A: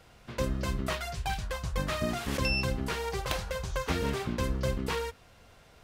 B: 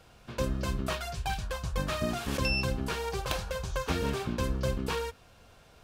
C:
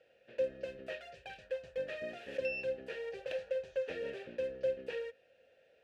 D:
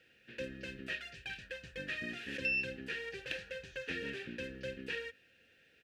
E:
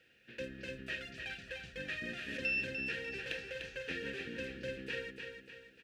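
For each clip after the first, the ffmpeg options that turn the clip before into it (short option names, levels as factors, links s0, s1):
-af "bandreject=f=2000:w=8.9"
-filter_complex "[0:a]asplit=3[s0][s1][s2];[s0]bandpass=f=530:t=q:w=8,volume=1[s3];[s1]bandpass=f=1840:t=q:w=8,volume=0.501[s4];[s2]bandpass=f=2480:t=q:w=8,volume=0.355[s5];[s3][s4][s5]amix=inputs=3:normalize=0,volume=1.33"
-af "firequalizer=gain_entry='entry(300,0);entry(570,-22);entry(880,-11);entry(1600,0)':delay=0.05:min_phase=1,volume=2.37"
-af "aecho=1:1:297|594|891|1188|1485:0.501|0.216|0.0927|0.0398|0.0171,volume=0.891"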